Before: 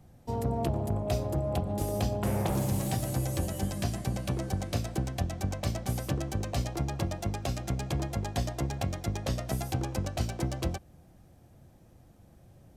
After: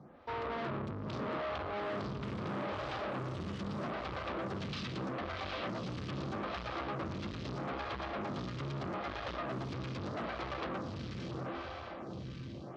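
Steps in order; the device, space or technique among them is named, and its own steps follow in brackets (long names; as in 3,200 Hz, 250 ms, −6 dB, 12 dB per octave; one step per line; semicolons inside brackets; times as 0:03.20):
0:04.56–0:05.04: meter weighting curve D
feedback delay with all-pass diffusion 865 ms, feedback 45%, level −6 dB
vibe pedal into a guitar amplifier (phaser with staggered stages 0.79 Hz; tube saturation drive 45 dB, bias 0.4; loudspeaker in its box 100–4,200 Hz, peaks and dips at 110 Hz −5 dB, 750 Hz −4 dB, 1,200 Hz +8 dB)
level +9.5 dB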